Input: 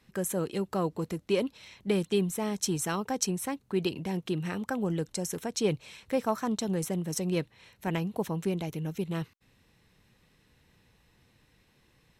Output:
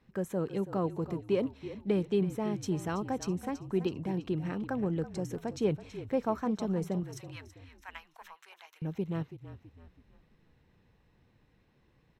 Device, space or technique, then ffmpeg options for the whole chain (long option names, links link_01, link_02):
through cloth: -filter_complex "[0:a]equalizer=frequency=10000:width_type=o:width=0.79:gain=-7.5,asettb=1/sr,asplit=3[link_01][link_02][link_03];[link_01]atrim=end=7.034[link_04];[link_02]atrim=start=7.03:end=8.82,asetpts=PTS-STARTPTS,afade=type=in:duration=0.004:curve=qsin,afade=type=out:start_time=1.786:duration=0.004:curve=qsin,highpass=frequency=1100:width=0.5412,highpass=frequency=1100:width=1.3066[link_05];[link_03]atrim=start=8.816[link_06];[link_04][link_05]acrossfade=duration=0.004:curve1=hsin:curve2=qsin[link_07];[link_07][link_06]acrossfade=duration=0.004:curve1=qsin:curve2=hsin,highshelf=frequency=2100:gain=-12,asplit=5[link_08][link_09][link_10][link_11][link_12];[link_09]adelay=328,afreqshift=-42,volume=-13dB[link_13];[link_10]adelay=656,afreqshift=-84,volume=-20.7dB[link_14];[link_11]adelay=984,afreqshift=-126,volume=-28.5dB[link_15];[link_12]adelay=1312,afreqshift=-168,volume=-36.2dB[link_16];[link_08][link_13][link_14][link_15][link_16]amix=inputs=5:normalize=0,volume=-1dB"